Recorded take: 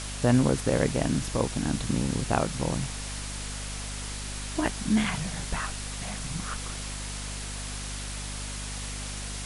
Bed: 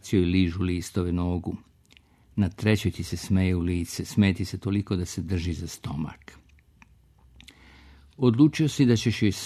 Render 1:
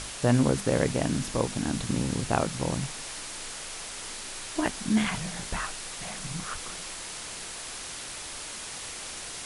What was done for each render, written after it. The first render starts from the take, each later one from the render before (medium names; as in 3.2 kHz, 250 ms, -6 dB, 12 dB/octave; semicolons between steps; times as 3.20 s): hum notches 50/100/150/200/250 Hz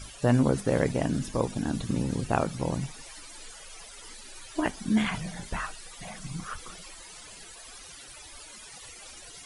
noise reduction 16 dB, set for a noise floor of -39 dBFS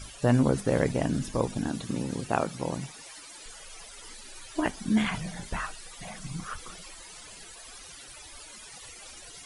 1.68–3.46 s: high-pass 200 Hz 6 dB/octave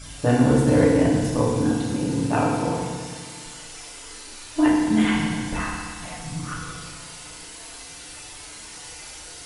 FDN reverb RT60 1.6 s, low-frequency decay 1.2×, high-frequency decay 1×, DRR -5 dB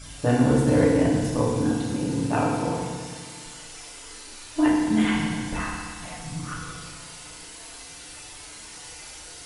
trim -2 dB